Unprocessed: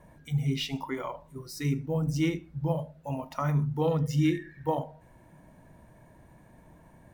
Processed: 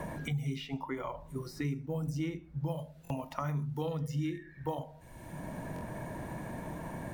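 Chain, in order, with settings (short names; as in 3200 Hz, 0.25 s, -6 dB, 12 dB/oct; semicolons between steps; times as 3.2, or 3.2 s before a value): stuck buffer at 3.03/5.74, samples 1024, times 2; three-band squash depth 100%; gain -6.5 dB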